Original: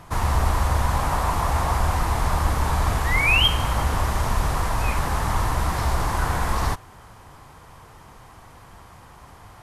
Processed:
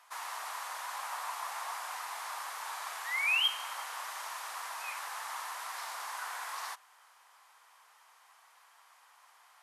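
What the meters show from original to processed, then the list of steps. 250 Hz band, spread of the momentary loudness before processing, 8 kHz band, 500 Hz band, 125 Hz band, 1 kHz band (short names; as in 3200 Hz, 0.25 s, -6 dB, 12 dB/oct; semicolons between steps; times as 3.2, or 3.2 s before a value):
under -40 dB, 6 LU, -9.0 dB, -22.5 dB, under -40 dB, -14.0 dB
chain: Bessel high-pass 1200 Hz, order 4; gain -9 dB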